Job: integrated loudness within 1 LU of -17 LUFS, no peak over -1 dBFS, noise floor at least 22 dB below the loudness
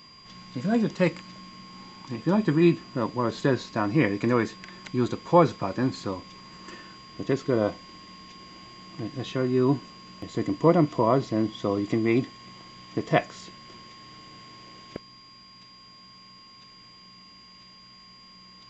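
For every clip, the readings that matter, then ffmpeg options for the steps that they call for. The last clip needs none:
steady tone 4800 Hz; tone level -50 dBFS; loudness -26.0 LUFS; peak -6.0 dBFS; loudness target -17.0 LUFS
-> -af "bandreject=f=4.8k:w=30"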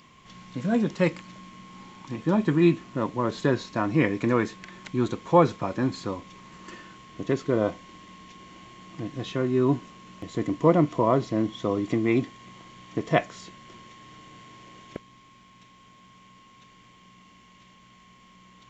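steady tone none; loudness -25.5 LUFS; peak -6.0 dBFS; loudness target -17.0 LUFS
-> -af "volume=8.5dB,alimiter=limit=-1dB:level=0:latency=1"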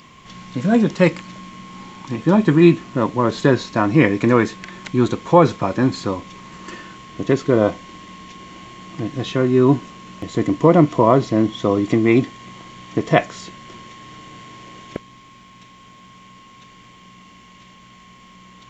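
loudness -17.5 LUFS; peak -1.0 dBFS; noise floor -46 dBFS

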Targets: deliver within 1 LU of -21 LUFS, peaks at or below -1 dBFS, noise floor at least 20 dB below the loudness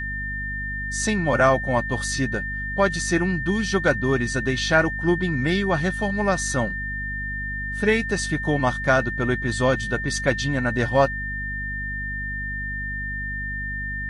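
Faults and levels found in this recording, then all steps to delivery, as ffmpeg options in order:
hum 50 Hz; harmonics up to 250 Hz; hum level -30 dBFS; steady tone 1800 Hz; tone level -28 dBFS; loudness -23.5 LUFS; peak -5.5 dBFS; loudness target -21.0 LUFS
-> -af "bandreject=f=50:t=h:w=6,bandreject=f=100:t=h:w=6,bandreject=f=150:t=h:w=6,bandreject=f=200:t=h:w=6,bandreject=f=250:t=h:w=6"
-af "bandreject=f=1.8k:w=30"
-af "volume=2.5dB"

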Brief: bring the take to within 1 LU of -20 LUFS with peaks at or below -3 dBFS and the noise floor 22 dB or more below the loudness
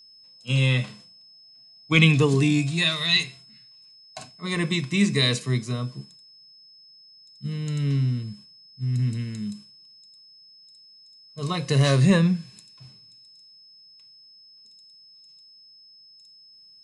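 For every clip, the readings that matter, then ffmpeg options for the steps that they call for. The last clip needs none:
steady tone 5200 Hz; tone level -49 dBFS; loudness -23.0 LUFS; peak -3.5 dBFS; loudness target -20.0 LUFS
-> -af "bandreject=f=5.2k:w=30"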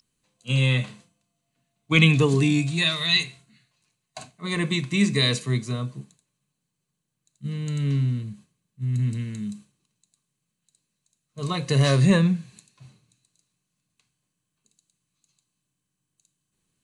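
steady tone none; loudness -23.0 LUFS; peak -3.5 dBFS; loudness target -20.0 LUFS
-> -af "volume=3dB,alimiter=limit=-3dB:level=0:latency=1"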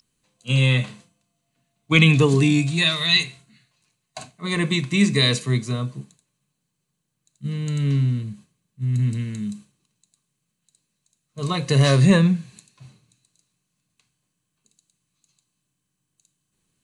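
loudness -20.0 LUFS; peak -3.0 dBFS; noise floor -78 dBFS

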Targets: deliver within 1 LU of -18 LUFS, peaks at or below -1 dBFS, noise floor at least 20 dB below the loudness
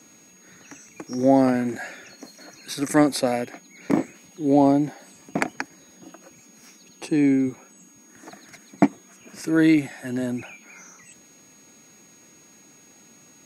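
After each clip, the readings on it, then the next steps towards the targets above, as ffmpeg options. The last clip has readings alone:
steady tone 6600 Hz; tone level -52 dBFS; loudness -23.0 LUFS; peak -2.5 dBFS; loudness target -18.0 LUFS
-> -af "bandreject=f=6.6k:w=30"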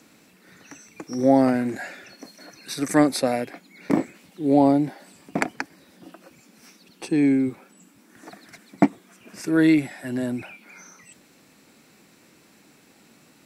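steady tone none; loudness -22.5 LUFS; peak -2.5 dBFS; loudness target -18.0 LUFS
-> -af "volume=4.5dB,alimiter=limit=-1dB:level=0:latency=1"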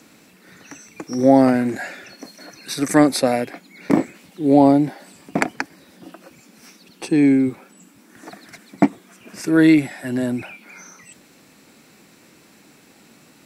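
loudness -18.5 LUFS; peak -1.0 dBFS; noise floor -52 dBFS

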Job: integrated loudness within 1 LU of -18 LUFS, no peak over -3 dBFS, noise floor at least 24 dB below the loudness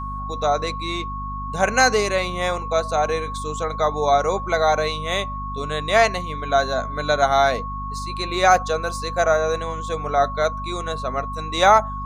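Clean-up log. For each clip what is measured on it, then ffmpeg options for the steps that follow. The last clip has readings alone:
hum 50 Hz; harmonics up to 250 Hz; hum level -29 dBFS; steady tone 1100 Hz; tone level -29 dBFS; loudness -21.5 LUFS; peak -2.5 dBFS; loudness target -18.0 LUFS
-> -af "bandreject=f=50:t=h:w=6,bandreject=f=100:t=h:w=6,bandreject=f=150:t=h:w=6,bandreject=f=200:t=h:w=6,bandreject=f=250:t=h:w=6"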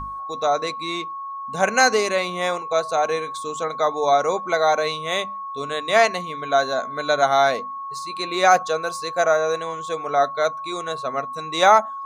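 hum none; steady tone 1100 Hz; tone level -29 dBFS
-> -af "bandreject=f=1.1k:w=30"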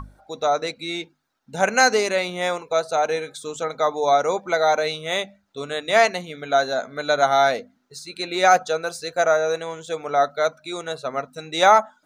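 steady tone none; loudness -21.5 LUFS; peak -3.0 dBFS; loudness target -18.0 LUFS
-> -af "volume=3.5dB,alimiter=limit=-3dB:level=0:latency=1"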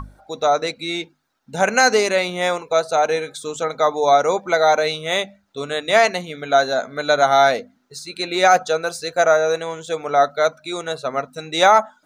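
loudness -18.5 LUFS; peak -3.0 dBFS; noise floor -62 dBFS

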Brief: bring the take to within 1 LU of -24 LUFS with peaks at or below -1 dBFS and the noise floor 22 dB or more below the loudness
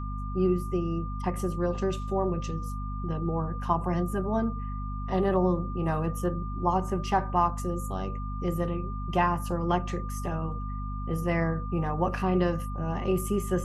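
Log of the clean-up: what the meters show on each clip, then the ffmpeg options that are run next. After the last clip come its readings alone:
hum 50 Hz; harmonics up to 250 Hz; hum level -31 dBFS; steady tone 1200 Hz; tone level -40 dBFS; loudness -29.5 LUFS; peak -11.5 dBFS; loudness target -24.0 LUFS
-> -af "bandreject=f=50:t=h:w=4,bandreject=f=100:t=h:w=4,bandreject=f=150:t=h:w=4,bandreject=f=200:t=h:w=4,bandreject=f=250:t=h:w=4"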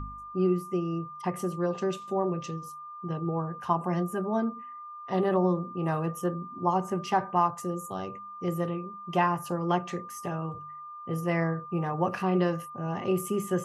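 hum none; steady tone 1200 Hz; tone level -40 dBFS
-> -af "bandreject=f=1.2k:w=30"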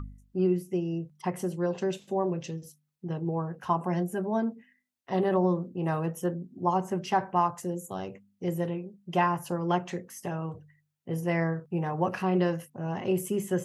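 steady tone none; loudness -30.5 LUFS; peak -13.5 dBFS; loudness target -24.0 LUFS
-> -af "volume=6.5dB"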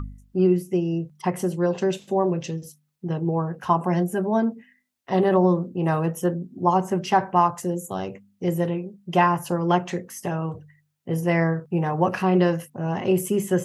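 loudness -24.0 LUFS; peak -7.0 dBFS; noise floor -69 dBFS

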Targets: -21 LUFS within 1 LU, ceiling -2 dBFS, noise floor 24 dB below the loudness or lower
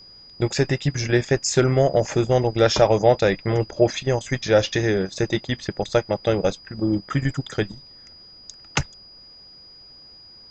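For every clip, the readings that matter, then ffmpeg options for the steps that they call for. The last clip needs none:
steady tone 4900 Hz; tone level -44 dBFS; loudness -22.0 LUFS; peak -3.0 dBFS; loudness target -21.0 LUFS
-> -af "bandreject=f=4.9k:w=30"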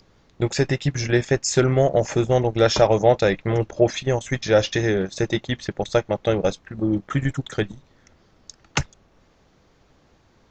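steady tone none; loudness -22.0 LUFS; peak -3.5 dBFS; loudness target -21.0 LUFS
-> -af "volume=1dB"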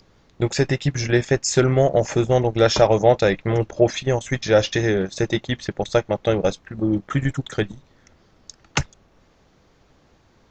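loudness -21.0 LUFS; peak -2.5 dBFS; noise floor -58 dBFS

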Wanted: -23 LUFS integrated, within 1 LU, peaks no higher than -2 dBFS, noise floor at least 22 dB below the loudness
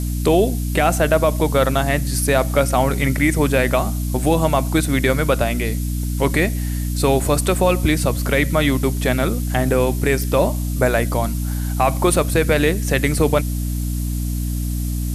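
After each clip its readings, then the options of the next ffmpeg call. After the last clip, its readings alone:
hum 60 Hz; harmonics up to 300 Hz; hum level -20 dBFS; noise floor -23 dBFS; noise floor target -41 dBFS; loudness -19.0 LUFS; peak -4.0 dBFS; loudness target -23.0 LUFS
-> -af "bandreject=f=60:t=h:w=4,bandreject=f=120:t=h:w=4,bandreject=f=180:t=h:w=4,bandreject=f=240:t=h:w=4,bandreject=f=300:t=h:w=4"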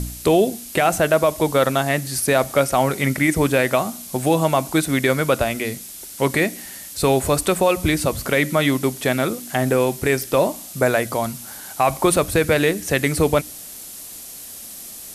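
hum none; noise floor -37 dBFS; noise floor target -42 dBFS
-> -af "afftdn=nr=6:nf=-37"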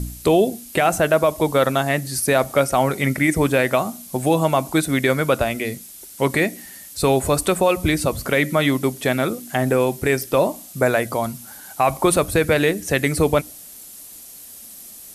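noise floor -40 dBFS; noise floor target -42 dBFS
-> -af "afftdn=nr=6:nf=-40"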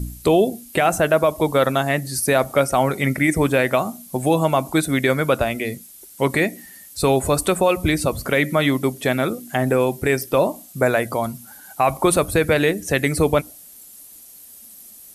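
noise floor -44 dBFS; loudness -20.0 LUFS; peak -6.0 dBFS; loudness target -23.0 LUFS
-> -af "volume=-3dB"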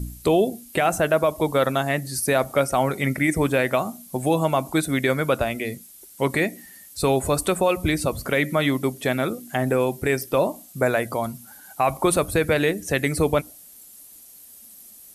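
loudness -23.0 LUFS; peak -9.0 dBFS; noise floor -47 dBFS

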